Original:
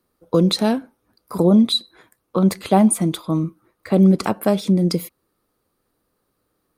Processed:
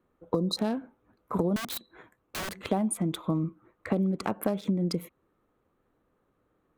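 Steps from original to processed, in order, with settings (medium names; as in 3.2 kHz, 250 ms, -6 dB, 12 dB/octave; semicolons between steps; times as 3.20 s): local Wiener filter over 9 samples; 0.35–0.58 s: spectral selection erased 1.3–3.7 kHz; compression 12:1, threshold -24 dBFS, peak gain reduction 15 dB; 1.56–2.65 s: integer overflow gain 29.5 dB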